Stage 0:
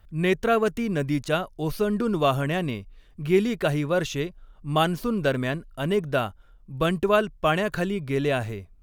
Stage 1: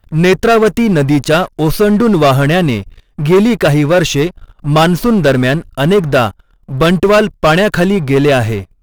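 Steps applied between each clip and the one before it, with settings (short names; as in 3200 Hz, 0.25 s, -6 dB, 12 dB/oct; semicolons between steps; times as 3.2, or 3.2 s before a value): sample leveller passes 3; gain +5.5 dB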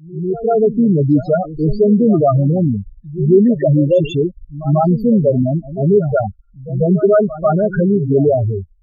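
opening faded in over 0.72 s; loudest bins only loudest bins 4; pre-echo 0.143 s -14.5 dB; gain -1 dB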